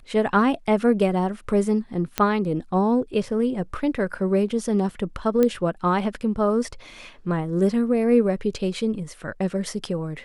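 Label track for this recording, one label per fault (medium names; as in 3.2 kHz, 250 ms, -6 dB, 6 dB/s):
2.180000	2.180000	pop -6 dBFS
5.430000	5.430000	pop -9 dBFS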